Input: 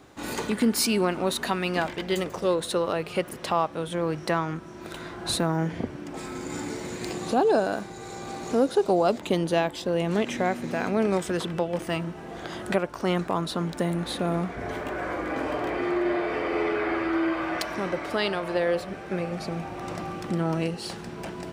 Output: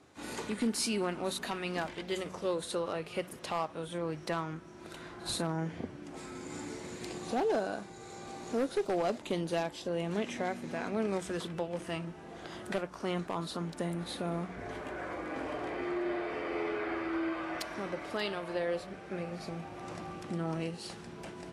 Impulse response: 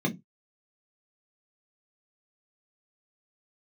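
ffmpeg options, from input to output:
-af "bandreject=f=61.46:t=h:w=4,bandreject=f=122.92:t=h:w=4,bandreject=f=184.38:t=h:w=4,aeval=exprs='0.188*(abs(mod(val(0)/0.188+3,4)-2)-1)':c=same,volume=-8.5dB" -ar 32000 -c:a libvorbis -b:a 32k

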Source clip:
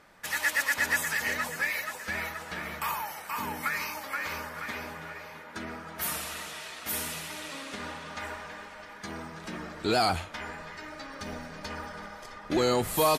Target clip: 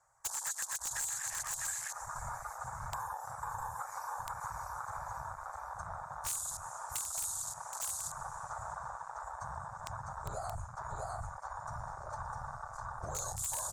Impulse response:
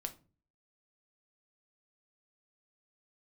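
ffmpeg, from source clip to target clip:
-filter_complex "[0:a]afftfilt=real='hypot(re,im)*cos(2*PI*random(0))':imag='hypot(re,im)*sin(2*PI*random(1))':win_size=512:overlap=0.75,firequalizer=gain_entry='entry(140,0);entry(240,-26);entry(640,1);entry(950,6);entry(3100,-24);entry(7200,14);entry(13000,-3)':delay=0.05:min_phase=1,acrossover=split=160|3000[a][b][c];[b]acompressor=threshold=-48dB:ratio=2[d];[a][d][c]amix=inputs=3:normalize=0,asplit=2[e][f];[f]aecho=0:1:627:0.668[g];[e][g]amix=inputs=2:normalize=0,afwtdn=0.00794,asetrate=42336,aresample=44100,acompressor=threshold=-44dB:ratio=6,aeval=exprs='(mod(56.2*val(0)+1,2)-1)/56.2':c=same,equalizer=f=290:t=o:w=2.1:g=-6,volume=9dB"

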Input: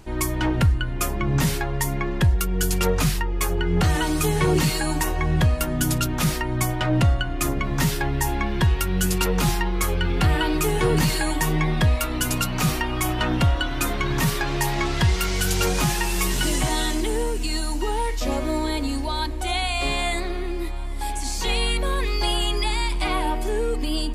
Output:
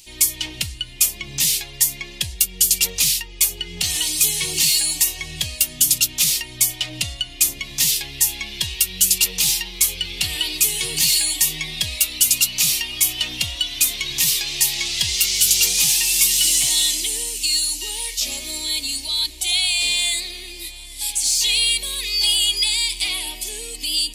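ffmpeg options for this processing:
-af "aexciter=amount=13.1:drive=8.6:freq=2.3k,volume=-15.5dB"

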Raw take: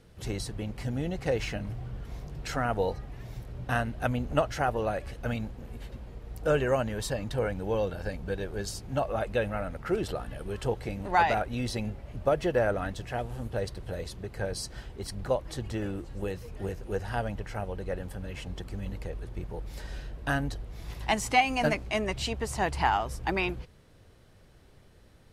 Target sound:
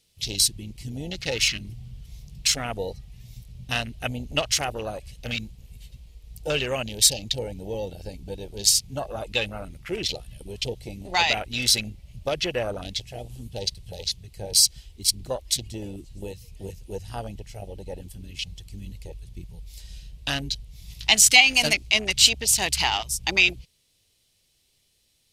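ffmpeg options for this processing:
-af "aexciter=amount=13.9:drive=1.3:freq=2.3k,afwtdn=0.0355,volume=-2dB"

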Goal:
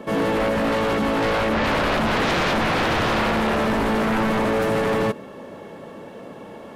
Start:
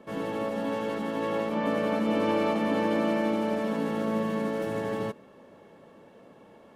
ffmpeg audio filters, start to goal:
-af "aeval=exprs='0.2*sin(PI/2*5.01*val(0)/0.2)':c=same,volume=-3.5dB"

